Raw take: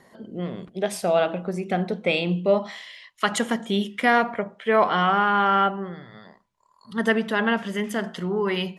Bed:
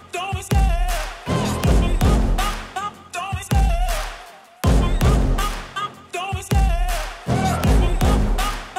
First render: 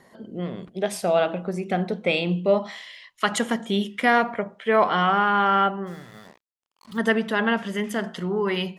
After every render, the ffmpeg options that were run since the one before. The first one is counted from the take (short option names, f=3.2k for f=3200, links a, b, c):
-filter_complex "[0:a]asplit=3[a][b][c];[a]afade=t=out:st=5.86:d=0.02[d];[b]acrusher=bits=7:mix=0:aa=0.5,afade=t=in:st=5.86:d=0.02,afade=t=out:st=6.97:d=0.02[e];[c]afade=t=in:st=6.97:d=0.02[f];[d][e][f]amix=inputs=3:normalize=0"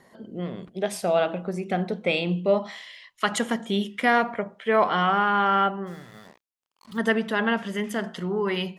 -af "volume=-1.5dB"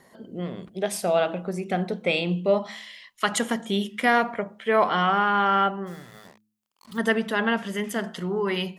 -af "highshelf=f=7.6k:g=7,bandreject=f=106.8:t=h:w=4,bandreject=f=213.6:t=h:w=4,bandreject=f=320.4:t=h:w=4"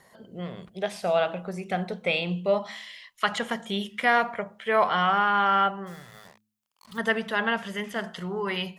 -filter_complex "[0:a]equalizer=f=290:t=o:w=1:g=-10,acrossover=split=4700[a][b];[b]acompressor=threshold=-49dB:ratio=4:attack=1:release=60[c];[a][c]amix=inputs=2:normalize=0"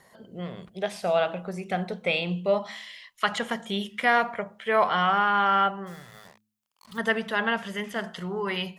-af anull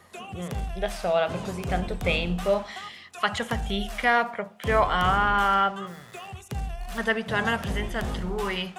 -filter_complex "[1:a]volume=-14.5dB[a];[0:a][a]amix=inputs=2:normalize=0"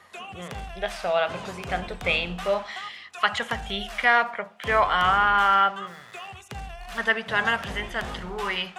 -af "lowpass=f=2.5k:p=1,tiltshelf=f=670:g=-7.5"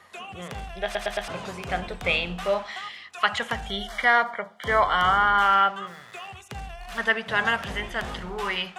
-filter_complex "[0:a]asettb=1/sr,asplit=3[a][b][c];[a]atrim=end=3.684[d];[b]atrim=start=3.68:end=5.42,asetpts=PTS-STARTPTS,afade=t=in:d=0.004:c=qsin,afade=t=out:st=1.736:d=0.004:c=qsin,asuperstop=centerf=2600:order=12:qfactor=4.9[e];[c]atrim=start=5.416[f];[d][e]acrossfade=d=0.004:c1=hsin:c2=qsin[g];[g][f]acrossfade=d=0.004:c1=qsin:c2=hsin,asplit=5[h][i][j][k][l];[h]atrim=end=0.952[m];[i]atrim=start=0.838:end=0.952[n];[j]atrim=start=0.838:end=0.952[o];[k]atrim=start=0.838:end=0.952[p];[l]atrim=start=1.278[q];[m][n]acrossfade=d=0.004:c1=hsin:c2=hsin[r];[r][o]acrossfade=d=0.004:c1=hsin:c2=hsin[s];[s][p]acrossfade=d=0.004:c1=hsin:c2=hsin[t];[t][q]acrossfade=d=0.004:c1=hsin:c2=hsin"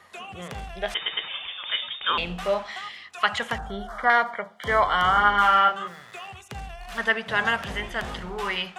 -filter_complex "[0:a]asettb=1/sr,asplit=3[a][b][c];[a]atrim=end=0.944[d];[b]atrim=start=0.94:end=2.18,asetpts=PTS-STARTPTS,afade=t=in:d=0.004:c=qsin,afade=t=out:st=1.236:d=0.004:c=qsin,lowpass=f=3.1k:t=q:w=0.5098,lowpass=f=3.1k:t=q:w=0.6013,lowpass=f=3.1k:t=q:w=0.9,lowpass=f=3.1k:t=q:w=2.563,afreqshift=-3700[e];[c]atrim=start=2.176[f];[d][e]acrossfade=d=0.004:c1=hsin:c2=qsin[g];[g][f]acrossfade=d=0.004:c1=qsin:c2=hsin,asettb=1/sr,asplit=3[h][i][j];[h]atrim=end=3.584[k];[i]atrim=start=3.58:end=4.1,asetpts=PTS-STARTPTS,afade=t=in:d=0.004:c=qsin,afade=t=out:st=0.516:d=0.004:c=qsin,highshelf=f=1.8k:t=q:w=3:g=-10.5[l];[j]atrim=start=4.096[m];[k][l]acrossfade=d=0.004:c1=hsin:c2=qsin[n];[n][m]acrossfade=d=0.004:c1=qsin:c2=hsin,asettb=1/sr,asplit=3[o][p][q];[o]atrim=end=5.124[r];[p]atrim=start=5.12:end=5.88,asetpts=PTS-STARTPTS,afade=t=in:d=0.004:c=qsin,afade=t=out:st=0.756:d=0.004:c=qsin,asplit=2[s][t];[t]adelay=34,volume=-4dB[u];[s][u]amix=inputs=2:normalize=0,atrim=end_sample=33516[v];[q]atrim=start=5.876[w];[r][v]acrossfade=d=0.004:c1=hsin:c2=qsin[x];[x][w]acrossfade=d=0.004:c1=qsin:c2=hsin"